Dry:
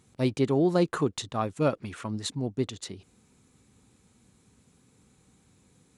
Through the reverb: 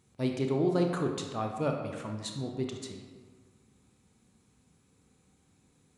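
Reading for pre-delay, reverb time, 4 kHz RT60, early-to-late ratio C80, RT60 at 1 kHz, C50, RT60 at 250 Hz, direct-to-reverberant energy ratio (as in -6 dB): 24 ms, 1.6 s, 0.95 s, 6.0 dB, 1.6 s, 4.5 dB, 1.6 s, 2.5 dB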